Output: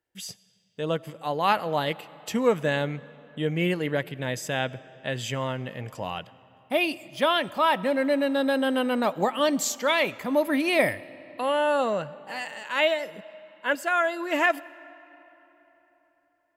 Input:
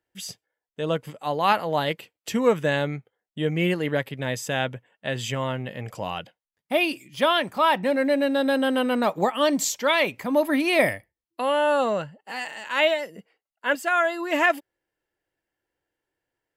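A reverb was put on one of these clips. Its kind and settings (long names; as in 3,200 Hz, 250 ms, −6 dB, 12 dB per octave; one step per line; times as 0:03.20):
comb and all-pass reverb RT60 3.8 s, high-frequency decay 0.65×, pre-delay 45 ms, DRR 19.5 dB
level −2 dB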